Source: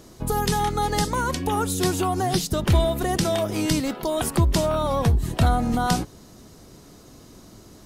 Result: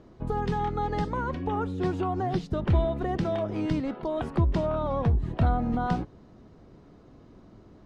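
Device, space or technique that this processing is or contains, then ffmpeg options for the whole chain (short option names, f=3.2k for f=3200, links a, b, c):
phone in a pocket: -filter_complex "[0:a]asettb=1/sr,asplit=3[a][b][c];[a]atrim=end=1.174[d];[b]atrim=start=1.17:end=1.84,asetpts=PTS-STARTPTS,afade=t=in:d=0.004:c=qsin,afade=t=out:st=0.666:d=0.004:c=qsin,acrossover=split=3600[e][f];[f]acompressor=threshold=-35dB:ratio=4:attack=1:release=60[g];[e][g]amix=inputs=2:normalize=0[h];[c]atrim=start=1.836[i];[d][h]acrossfade=d=0.004:c1=hsin:c2=qsin[j];[j][i]acrossfade=d=0.004:c1=qsin:c2=hsin,lowpass=3.2k,highshelf=f=2k:g=-10,volume=-4dB"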